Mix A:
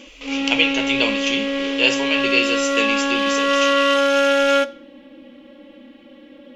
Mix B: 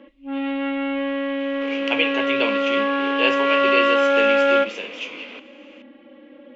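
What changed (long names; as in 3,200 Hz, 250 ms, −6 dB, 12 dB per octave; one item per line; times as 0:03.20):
speech: entry +1.40 s
master: add three-way crossover with the lows and the highs turned down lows −14 dB, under 210 Hz, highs −22 dB, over 2,900 Hz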